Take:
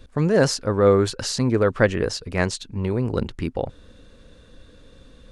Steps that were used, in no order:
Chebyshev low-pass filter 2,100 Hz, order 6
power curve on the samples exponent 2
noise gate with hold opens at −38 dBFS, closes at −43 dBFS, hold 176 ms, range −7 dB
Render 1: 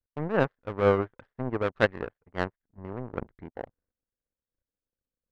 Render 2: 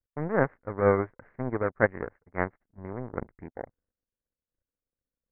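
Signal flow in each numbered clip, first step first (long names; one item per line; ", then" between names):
Chebyshev low-pass filter, then power curve on the samples, then noise gate with hold
power curve on the samples, then Chebyshev low-pass filter, then noise gate with hold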